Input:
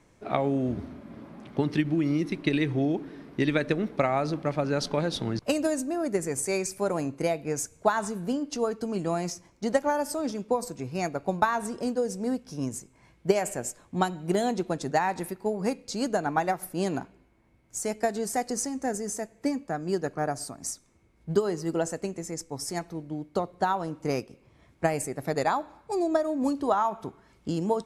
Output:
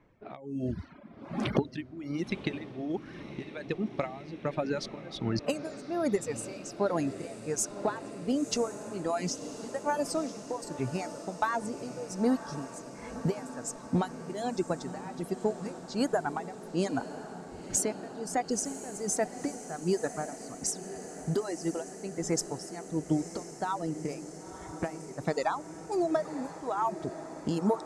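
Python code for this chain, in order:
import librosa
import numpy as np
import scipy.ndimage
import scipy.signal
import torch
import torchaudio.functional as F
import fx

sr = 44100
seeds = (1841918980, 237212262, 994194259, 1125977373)

y = fx.recorder_agc(x, sr, target_db=-13.0, rise_db_per_s=23.0, max_gain_db=30)
y = fx.dereverb_blind(y, sr, rt60_s=1.5)
y = fx.env_lowpass(y, sr, base_hz=2400.0, full_db=-18.0)
y = fx.dereverb_blind(y, sr, rt60_s=0.56)
y = 10.0 ** (-7.5 / 20.0) * np.tanh(y / 10.0 ** (-7.5 / 20.0))
y = y * (1.0 - 0.88 / 2.0 + 0.88 / 2.0 * np.cos(2.0 * np.pi * 1.3 * (np.arange(len(y)) / sr)))
y = fx.echo_diffused(y, sr, ms=998, feedback_pct=74, wet_db=-12.5)
y = y * librosa.db_to_amplitude(-3.5)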